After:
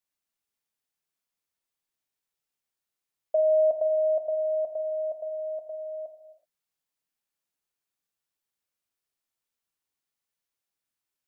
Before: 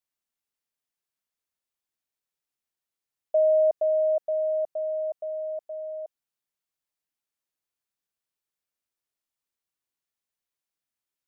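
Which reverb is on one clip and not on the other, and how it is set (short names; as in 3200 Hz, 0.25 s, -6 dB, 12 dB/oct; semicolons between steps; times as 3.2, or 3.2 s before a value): non-linear reverb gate 0.4 s falling, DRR 5 dB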